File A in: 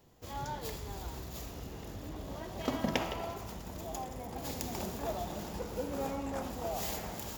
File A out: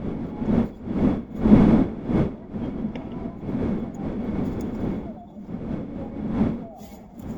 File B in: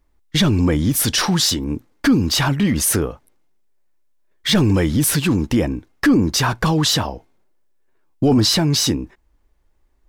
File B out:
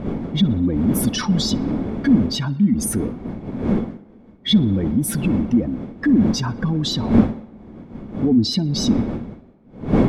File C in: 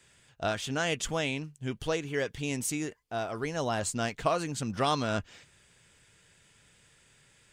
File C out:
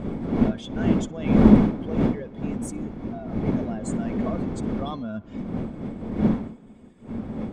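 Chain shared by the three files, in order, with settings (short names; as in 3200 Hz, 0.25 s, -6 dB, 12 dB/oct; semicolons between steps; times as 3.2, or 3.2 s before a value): spectral contrast raised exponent 1.8; wind noise 340 Hz -22 dBFS; small resonant body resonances 220/2200/3400 Hz, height 11 dB, ringing for 45 ms; on a send: tape echo 62 ms, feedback 81%, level -23 dB, low-pass 4400 Hz; on the sum: gain -7 dB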